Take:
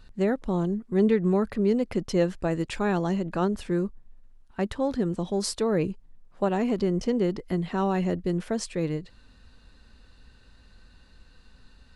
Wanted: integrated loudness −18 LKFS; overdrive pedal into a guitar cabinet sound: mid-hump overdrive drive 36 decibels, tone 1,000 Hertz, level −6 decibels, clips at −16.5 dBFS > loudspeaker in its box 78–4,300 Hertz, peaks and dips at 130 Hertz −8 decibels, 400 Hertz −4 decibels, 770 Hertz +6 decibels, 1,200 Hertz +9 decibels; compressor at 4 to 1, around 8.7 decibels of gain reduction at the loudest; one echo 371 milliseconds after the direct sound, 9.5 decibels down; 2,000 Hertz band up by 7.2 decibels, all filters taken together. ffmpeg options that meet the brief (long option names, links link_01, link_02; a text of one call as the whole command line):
ffmpeg -i in.wav -filter_complex "[0:a]equalizer=frequency=2000:width_type=o:gain=7.5,acompressor=threshold=-28dB:ratio=4,aecho=1:1:371:0.335,asplit=2[link_01][link_02];[link_02]highpass=frequency=720:poles=1,volume=36dB,asoftclip=type=tanh:threshold=-16.5dB[link_03];[link_01][link_03]amix=inputs=2:normalize=0,lowpass=frequency=1000:poles=1,volume=-6dB,highpass=78,equalizer=frequency=130:width_type=q:width=4:gain=-8,equalizer=frequency=400:width_type=q:width=4:gain=-4,equalizer=frequency=770:width_type=q:width=4:gain=6,equalizer=frequency=1200:width_type=q:width=4:gain=9,lowpass=frequency=4300:width=0.5412,lowpass=frequency=4300:width=1.3066,volume=8dB" out.wav